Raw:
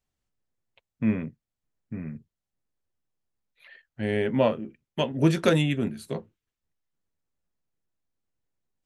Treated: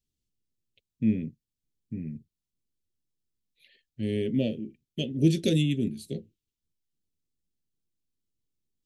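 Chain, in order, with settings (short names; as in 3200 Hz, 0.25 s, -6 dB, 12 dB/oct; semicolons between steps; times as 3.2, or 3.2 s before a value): Chebyshev band-stop 340–3400 Hz, order 2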